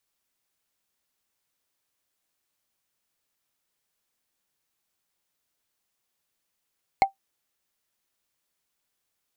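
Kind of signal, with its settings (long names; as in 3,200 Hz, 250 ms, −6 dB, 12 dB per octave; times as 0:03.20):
struck wood, lowest mode 781 Hz, decay 0.12 s, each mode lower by 7 dB, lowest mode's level −10 dB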